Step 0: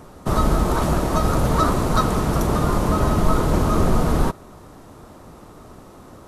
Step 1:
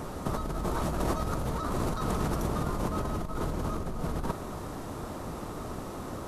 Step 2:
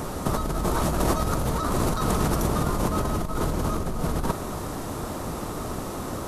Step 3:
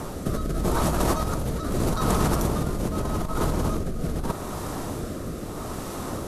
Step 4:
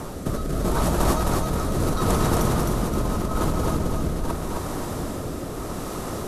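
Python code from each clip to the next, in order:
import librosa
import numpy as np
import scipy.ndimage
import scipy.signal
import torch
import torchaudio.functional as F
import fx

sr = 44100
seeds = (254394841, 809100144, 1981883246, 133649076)

y1 = fx.over_compress(x, sr, threshold_db=-27.0, ratio=-1.0)
y1 = y1 * 10.0 ** (-3.5 / 20.0)
y2 = fx.high_shelf(y1, sr, hz=5100.0, db=6.0)
y2 = y2 * 10.0 ** (6.0 / 20.0)
y3 = fx.rotary(y2, sr, hz=0.8)
y3 = y3 * 10.0 ** (1.5 / 20.0)
y4 = fx.echo_feedback(y3, sr, ms=263, feedback_pct=46, wet_db=-3.0)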